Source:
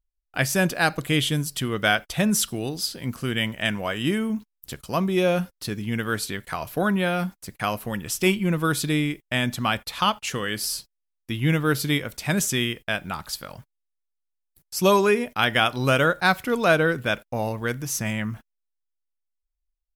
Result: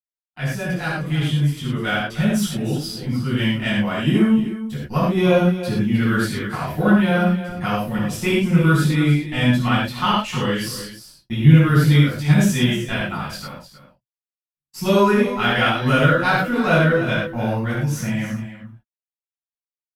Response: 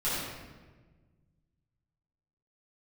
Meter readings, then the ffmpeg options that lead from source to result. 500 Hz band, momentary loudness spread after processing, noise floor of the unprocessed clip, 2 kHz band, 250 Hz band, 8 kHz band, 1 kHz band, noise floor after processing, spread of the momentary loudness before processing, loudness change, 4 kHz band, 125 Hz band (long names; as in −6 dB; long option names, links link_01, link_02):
+2.5 dB, 10 LU, −79 dBFS, +2.0 dB, +7.5 dB, −4.5 dB, +3.0 dB, below −85 dBFS, 11 LU, +5.0 dB, +0.5 dB, +10.0 dB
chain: -filter_complex "[0:a]aeval=exprs='if(lt(val(0),0),0.708*val(0),val(0))':channel_layout=same,highpass=frequency=150:poles=1,agate=range=-39dB:threshold=-39dB:ratio=16:detection=peak,bass=frequency=250:gain=10,treble=frequency=4000:gain=-5,dynaudnorm=framelen=590:gausssize=7:maxgain=11.5dB,aecho=1:1:307:0.237[link_01];[1:a]atrim=start_sample=2205,afade=type=out:start_time=0.18:duration=0.01,atrim=end_sample=8379[link_02];[link_01][link_02]afir=irnorm=-1:irlink=0,volume=-10.5dB"